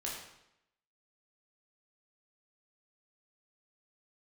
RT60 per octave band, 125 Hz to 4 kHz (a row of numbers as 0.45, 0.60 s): 0.80, 0.85, 0.80, 0.80, 0.80, 0.75 s